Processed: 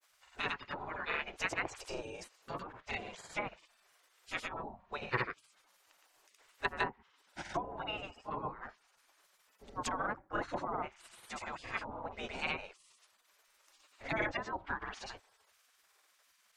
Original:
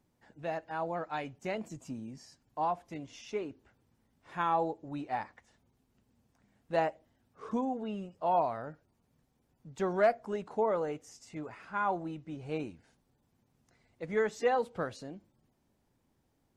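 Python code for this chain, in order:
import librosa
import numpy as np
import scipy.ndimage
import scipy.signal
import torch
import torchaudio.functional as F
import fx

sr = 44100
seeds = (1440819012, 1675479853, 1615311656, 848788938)

y = fx.env_lowpass_down(x, sr, base_hz=490.0, full_db=-27.5)
y = fx.granulator(y, sr, seeds[0], grain_ms=100.0, per_s=20.0, spray_ms=100.0, spread_st=0)
y = fx.spec_gate(y, sr, threshold_db=-20, keep='weak')
y = F.gain(torch.from_numpy(y), 17.0).numpy()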